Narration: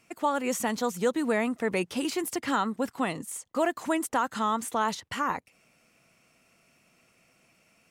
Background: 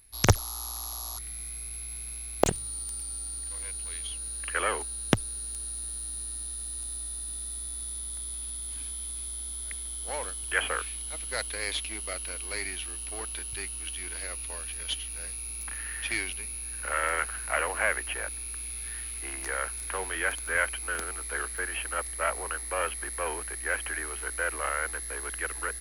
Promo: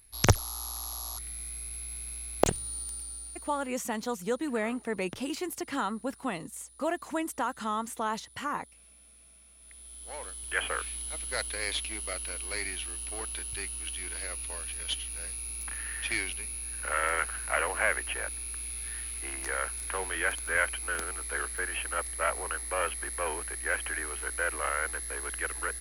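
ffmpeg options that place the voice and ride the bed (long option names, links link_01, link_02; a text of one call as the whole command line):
ffmpeg -i stem1.wav -i stem2.wav -filter_complex "[0:a]adelay=3250,volume=-4.5dB[link_01];[1:a]volume=19dB,afade=type=out:start_time=2.77:duration=0.99:silence=0.105925,afade=type=in:start_time=9.57:duration=1.42:silence=0.1[link_02];[link_01][link_02]amix=inputs=2:normalize=0" out.wav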